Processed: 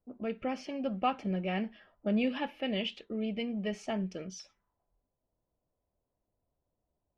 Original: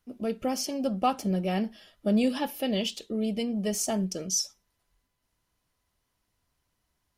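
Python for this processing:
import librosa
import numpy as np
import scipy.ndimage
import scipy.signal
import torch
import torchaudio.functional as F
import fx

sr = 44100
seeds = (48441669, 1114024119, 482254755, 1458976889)

y = fx.envelope_lowpass(x, sr, base_hz=600.0, top_hz=2400.0, q=2.3, full_db=-30.0, direction='up')
y = y * 10.0 ** (-5.5 / 20.0)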